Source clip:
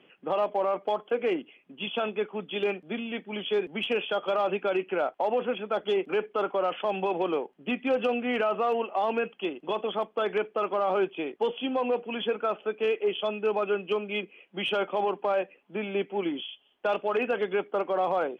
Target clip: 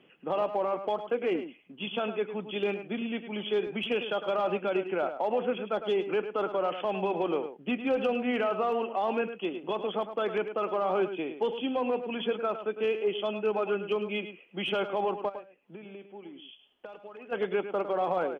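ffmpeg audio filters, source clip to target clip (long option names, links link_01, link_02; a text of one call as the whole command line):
ffmpeg -i in.wav -filter_complex "[0:a]lowshelf=frequency=210:gain=7,asplit=3[link_01][link_02][link_03];[link_01]afade=type=out:start_time=15.28:duration=0.02[link_04];[link_02]acompressor=threshold=-40dB:ratio=10,afade=type=in:start_time=15.28:duration=0.02,afade=type=out:start_time=17.31:duration=0.02[link_05];[link_03]afade=type=in:start_time=17.31:duration=0.02[link_06];[link_04][link_05][link_06]amix=inputs=3:normalize=0,asplit=2[link_07][link_08];[link_08]adelay=105,volume=-10dB,highshelf=frequency=4000:gain=-2.36[link_09];[link_07][link_09]amix=inputs=2:normalize=0,volume=-3dB" out.wav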